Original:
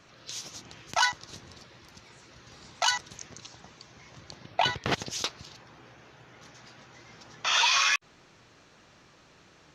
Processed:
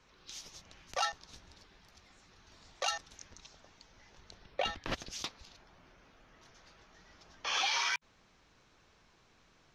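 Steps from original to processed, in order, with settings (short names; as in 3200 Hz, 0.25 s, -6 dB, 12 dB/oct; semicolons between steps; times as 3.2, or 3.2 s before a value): frequency shift -160 Hz; gain -8.5 dB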